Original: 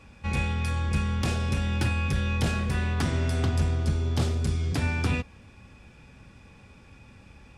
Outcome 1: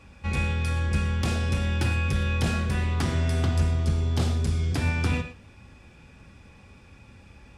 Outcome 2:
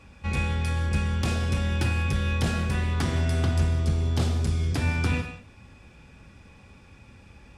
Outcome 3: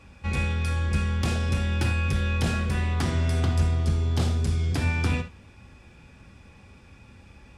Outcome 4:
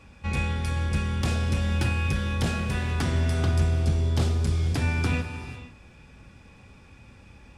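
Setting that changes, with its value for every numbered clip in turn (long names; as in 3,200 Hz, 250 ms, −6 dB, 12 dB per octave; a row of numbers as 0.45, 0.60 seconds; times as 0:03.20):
reverb whose tail is shaped and stops, gate: 140, 220, 100, 520 milliseconds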